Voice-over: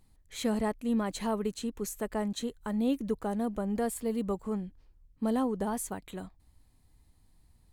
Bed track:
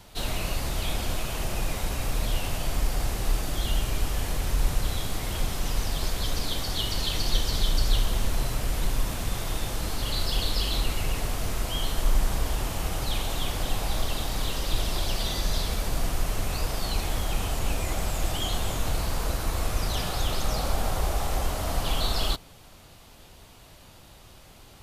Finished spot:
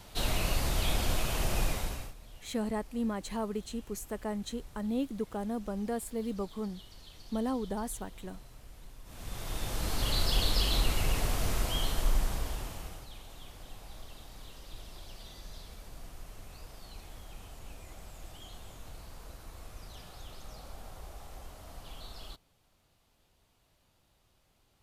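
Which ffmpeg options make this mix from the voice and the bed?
-filter_complex "[0:a]adelay=2100,volume=-3.5dB[a];[1:a]volume=22dB,afade=t=out:st=1.62:d=0.52:silence=0.0668344,afade=t=in:st=9.04:d=0.99:silence=0.0707946,afade=t=out:st=11.55:d=1.53:silence=0.11885[b];[a][b]amix=inputs=2:normalize=0"

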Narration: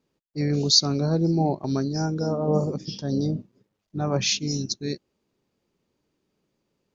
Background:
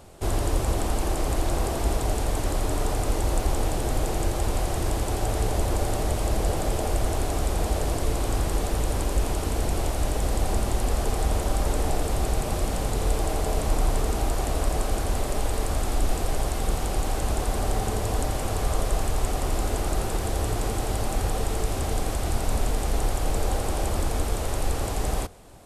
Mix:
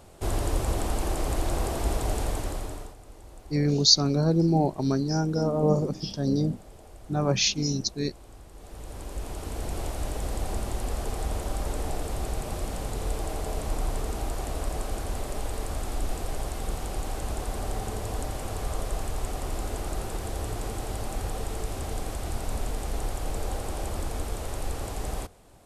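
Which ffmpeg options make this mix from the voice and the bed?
-filter_complex "[0:a]adelay=3150,volume=0dB[a];[1:a]volume=14.5dB,afade=t=out:st=2.24:d=0.71:silence=0.0944061,afade=t=in:st=8.54:d=1.29:silence=0.141254[b];[a][b]amix=inputs=2:normalize=0"

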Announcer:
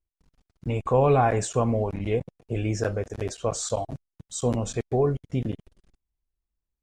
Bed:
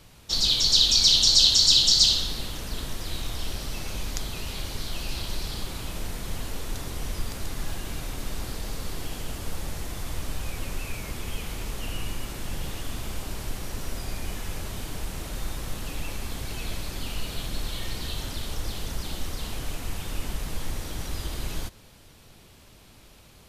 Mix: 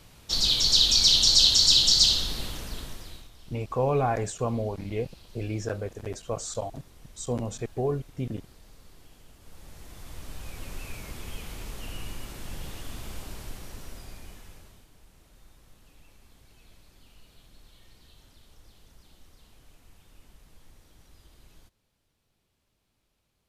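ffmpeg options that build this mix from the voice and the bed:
-filter_complex "[0:a]adelay=2850,volume=-5dB[a];[1:a]volume=13.5dB,afade=t=out:st=2.46:d=0.83:silence=0.112202,afade=t=in:st=9.39:d=1.47:silence=0.188365,afade=t=out:st=13.19:d=1.68:silence=0.125893[b];[a][b]amix=inputs=2:normalize=0"

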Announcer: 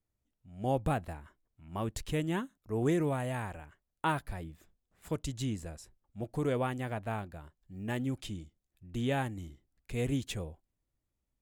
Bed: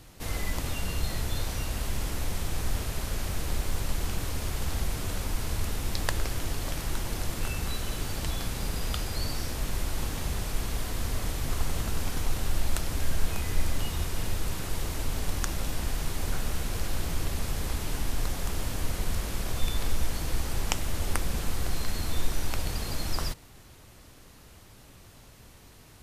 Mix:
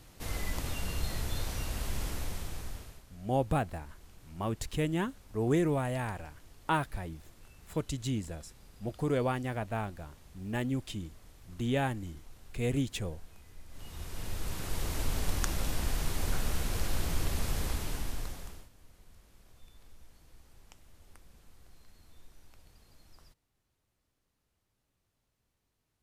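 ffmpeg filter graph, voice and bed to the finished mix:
-filter_complex "[0:a]adelay=2650,volume=1.5dB[a];[1:a]volume=19dB,afade=t=out:st=2.07:d=0.96:silence=0.0944061,afade=t=in:st=13.68:d=1.31:silence=0.0707946,afade=t=out:st=17.59:d=1.1:silence=0.0446684[b];[a][b]amix=inputs=2:normalize=0"

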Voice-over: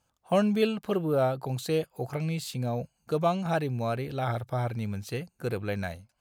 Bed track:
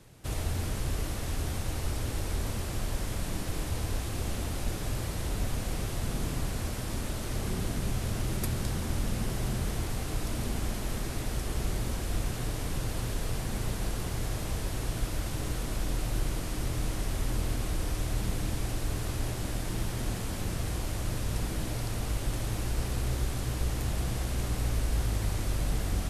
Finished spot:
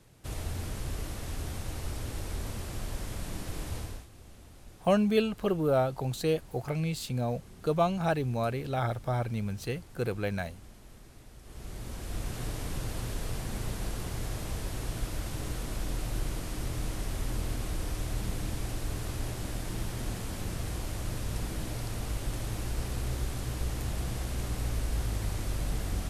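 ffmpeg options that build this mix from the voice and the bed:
-filter_complex "[0:a]adelay=4550,volume=-0.5dB[a];[1:a]volume=12.5dB,afade=t=out:st=3.76:d=0.31:silence=0.177828,afade=t=in:st=11.41:d=1.03:silence=0.149624[b];[a][b]amix=inputs=2:normalize=0"

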